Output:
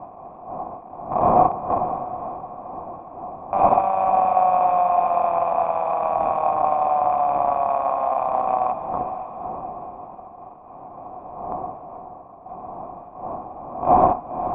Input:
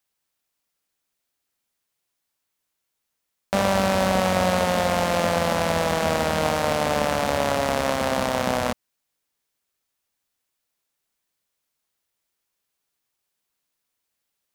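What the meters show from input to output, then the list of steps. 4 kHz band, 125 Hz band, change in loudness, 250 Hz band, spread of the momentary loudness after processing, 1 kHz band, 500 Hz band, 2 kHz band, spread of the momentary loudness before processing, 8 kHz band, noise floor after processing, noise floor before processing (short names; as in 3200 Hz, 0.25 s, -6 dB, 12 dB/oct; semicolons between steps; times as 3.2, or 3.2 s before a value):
under -25 dB, -6.5 dB, +1.5 dB, -4.5 dB, 20 LU, +9.0 dB, +1.5 dB, -15.0 dB, 3 LU, under -40 dB, -42 dBFS, -80 dBFS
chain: rattling part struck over -28 dBFS, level -15 dBFS; wind noise 310 Hz -21 dBFS; low shelf 140 Hz -7.5 dB; notch 430 Hz, Q 12; in parallel at -8 dB: companded quantiser 2-bit; on the sum: vocal tract filter a; diffused feedback echo 0.515 s, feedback 41%, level -9.5 dB; gain +8.5 dB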